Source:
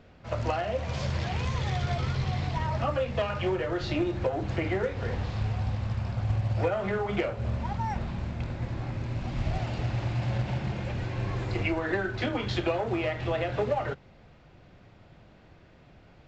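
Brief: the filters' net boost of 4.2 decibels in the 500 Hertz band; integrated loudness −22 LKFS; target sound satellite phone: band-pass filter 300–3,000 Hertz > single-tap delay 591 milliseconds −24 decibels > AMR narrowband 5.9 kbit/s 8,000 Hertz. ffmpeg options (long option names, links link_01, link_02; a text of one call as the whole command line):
ffmpeg -i in.wav -af "highpass=300,lowpass=3000,equalizer=frequency=500:width_type=o:gain=6,aecho=1:1:591:0.0631,volume=9.5dB" -ar 8000 -c:a libopencore_amrnb -b:a 5900 out.amr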